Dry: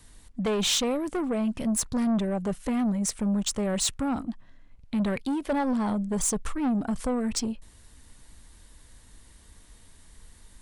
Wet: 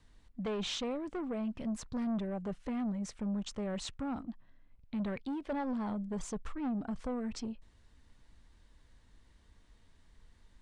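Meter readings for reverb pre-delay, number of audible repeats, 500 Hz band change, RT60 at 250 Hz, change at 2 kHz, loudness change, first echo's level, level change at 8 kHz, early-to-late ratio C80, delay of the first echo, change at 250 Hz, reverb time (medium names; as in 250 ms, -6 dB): no reverb, no echo, -9.5 dB, no reverb, -10.0 dB, -10.0 dB, no echo, -19.5 dB, no reverb, no echo, -9.0 dB, no reverb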